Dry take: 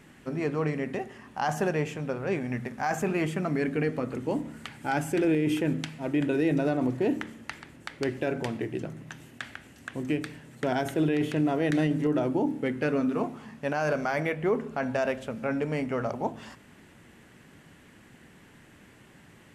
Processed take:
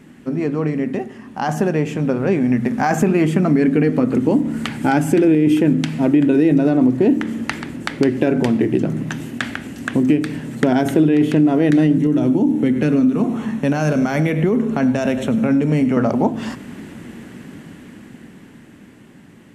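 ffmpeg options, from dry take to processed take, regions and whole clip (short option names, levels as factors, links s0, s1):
-filter_complex "[0:a]asettb=1/sr,asplit=3[s0][s1][s2];[s0]atrim=end=11.984[s3];[s1]atrim=start=11.98:end=15.97,asetpts=PTS-STARTPTS,afade=t=in:d=0.004:c=qsin,afade=t=out:st=3.986:d=0.004:c=qsin,acrossover=split=230|3000[s4][s5][s6];[s5]acompressor=threshold=0.01:ratio=2:attack=3.2:release=140:knee=2.83:detection=peak[s7];[s4][s7][s6]amix=inputs=3:normalize=0,asuperstop=centerf=4800:order=8:qfactor=6.4,aecho=1:1:99:0.188,atrim=end_sample=175959[s8];[s2]atrim=start=15.966[s9];[s3][s8]acrossfade=d=0.004:c1=hsin:c2=qsin[s10];[s10][s9]acrossfade=d=0.004:c1=qsin:c2=hsin,dynaudnorm=f=270:g=17:m=3.55,equalizer=f=240:w=1:g=10.5,acompressor=threshold=0.141:ratio=3,volume=1.41"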